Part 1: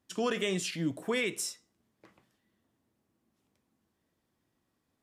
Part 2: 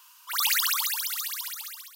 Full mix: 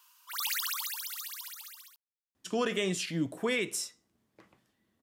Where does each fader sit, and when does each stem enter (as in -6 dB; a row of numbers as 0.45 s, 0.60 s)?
+0.5 dB, -8.5 dB; 2.35 s, 0.00 s